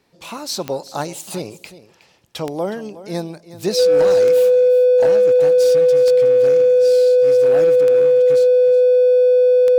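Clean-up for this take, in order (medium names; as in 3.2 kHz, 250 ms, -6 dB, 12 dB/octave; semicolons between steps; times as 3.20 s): clip repair -9.5 dBFS; de-click; band-stop 500 Hz, Q 30; inverse comb 366 ms -15.5 dB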